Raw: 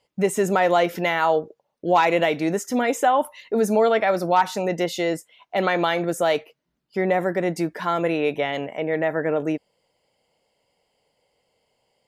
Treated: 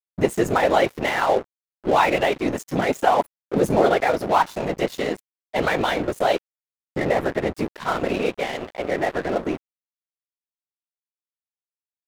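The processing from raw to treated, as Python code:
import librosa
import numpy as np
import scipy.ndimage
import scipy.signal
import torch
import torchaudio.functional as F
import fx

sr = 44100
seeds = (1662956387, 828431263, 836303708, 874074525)

y = fx.whisperise(x, sr, seeds[0])
y = np.sign(y) * np.maximum(np.abs(y) - 10.0 ** (-32.5 / 20.0), 0.0)
y = y * librosa.db_to_amplitude(1.5)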